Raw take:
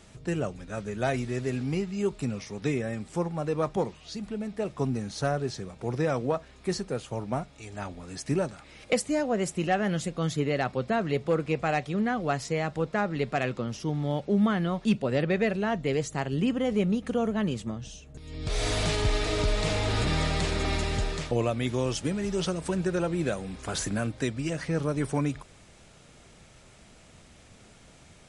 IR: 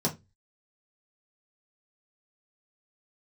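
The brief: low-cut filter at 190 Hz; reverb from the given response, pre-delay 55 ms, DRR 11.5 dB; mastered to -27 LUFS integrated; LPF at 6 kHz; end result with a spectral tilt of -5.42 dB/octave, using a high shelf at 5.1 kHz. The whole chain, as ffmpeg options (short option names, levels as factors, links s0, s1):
-filter_complex "[0:a]highpass=190,lowpass=6000,highshelf=f=5100:g=-5,asplit=2[s0][s1];[1:a]atrim=start_sample=2205,adelay=55[s2];[s1][s2]afir=irnorm=-1:irlink=0,volume=0.106[s3];[s0][s3]amix=inputs=2:normalize=0,volume=1.33"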